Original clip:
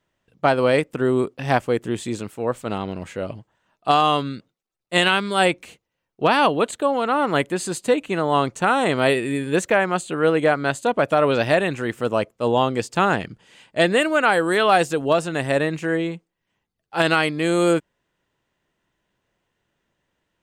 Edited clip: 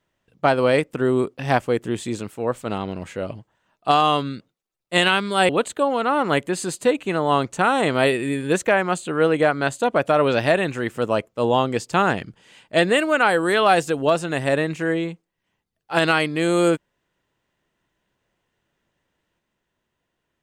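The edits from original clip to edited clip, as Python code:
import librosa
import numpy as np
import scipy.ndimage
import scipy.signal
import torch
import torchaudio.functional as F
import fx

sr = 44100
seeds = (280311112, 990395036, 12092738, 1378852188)

y = fx.edit(x, sr, fx.cut(start_s=5.49, length_s=1.03), tone=tone)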